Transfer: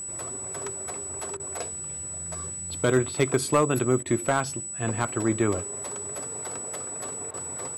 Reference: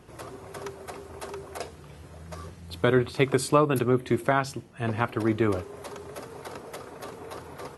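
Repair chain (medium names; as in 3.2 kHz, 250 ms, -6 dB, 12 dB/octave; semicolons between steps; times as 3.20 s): clip repair -13 dBFS; band-stop 7.9 kHz, Q 30; interpolate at 1.37/4.03/7.31 s, 27 ms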